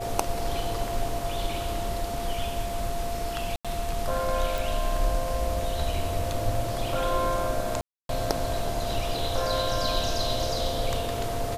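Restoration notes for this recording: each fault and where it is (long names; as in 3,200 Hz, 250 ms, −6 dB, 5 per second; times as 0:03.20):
whistle 690 Hz −32 dBFS
0:03.56–0:03.65: drop-out 86 ms
0:04.58: click
0:07.81–0:08.09: drop-out 282 ms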